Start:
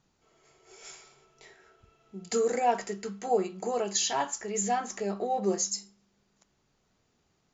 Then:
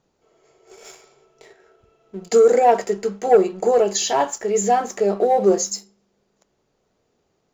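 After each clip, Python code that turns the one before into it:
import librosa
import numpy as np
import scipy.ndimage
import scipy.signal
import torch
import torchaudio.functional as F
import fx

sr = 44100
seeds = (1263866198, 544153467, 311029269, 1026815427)

y = fx.peak_eq(x, sr, hz=490.0, db=10.5, octaves=1.4)
y = fx.leveller(y, sr, passes=1)
y = F.gain(torch.from_numpy(y), 1.5).numpy()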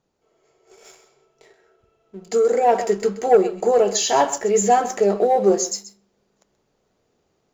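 y = x + 10.0 ** (-14.5 / 20.0) * np.pad(x, (int(129 * sr / 1000.0), 0))[:len(x)]
y = fx.rider(y, sr, range_db=10, speed_s=0.5)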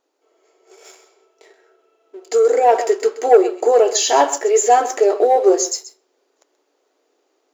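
y = fx.brickwall_highpass(x, sr, low_hz=260.0)
y = F.gain(torch.from_numpy(y), 3.5).numpy()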